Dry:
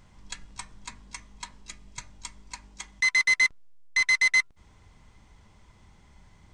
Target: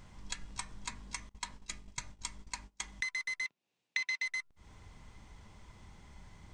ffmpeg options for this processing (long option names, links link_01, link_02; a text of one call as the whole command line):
ffmpeg -i in.wav -filter_complex "[0:a]asettb=1/sr,asplit=3[link_01][link_02][link_03];[link_01]atrim=end=1.294[link_04];[link_02]atrim=start=1.29:end=2.91,asetpts=PTS-STARTPTS,afade=type=in:duration=0.004:curve=qsin,afade=type=out:start_time=1.616:duration=0.004:curve=qsin,agate=range=-25dB:threshold=-47dB:ratio=16:detection=peak[link_05];[link_03]atrim=start=2.906[link_06];[link_04][link_05]acrossfade=duration=0.004:curve1=hsin:curve2=qsin[link_07];[link_07][link_06]acrossfade=duration=0.004:curve1=qsin:curve2=hsin,acompressor=threshold=-35dB:ratio=20,asettb=1/sr,asplit=3[link_08][link_09][link_10];[link_08]atrim=end=3.454[link_11];[link_09]atrim=start=3.45:end=4.26,asetpts=PTS-STARTPTS,afade=type=in:duration=0.004:curve=qsin,afade=type=out:start_time=0.806:duration=0.004:curve=qsin,highpass=frequency=160:width=0.5412,highpass=frequency=160:width=1.3066,equalizer=frequency=850:width_type=q:width=4:gain=3,equalizer=frequency=1300:width_type=q:width=4:gain=-4,equalizer=frequency=2600:width_type=q:width=4:gain=9,equalizer=frequency=3700:width_type=q:width=4:gain=4,lowpass=frequency=7600:width=0.5412,lowpass=frequency=7600:width=1.3066[link_12];[link_10]atrim=start=4.256[link_13];[link_11][link_12]acrossfade=duration=0.004:curve1=hsin:curve2=qsin[link_14];[link_14][link_13]acrossfade=duration=0.004:curve1=qsin:curve2=hsin,volume=1dB" out.wav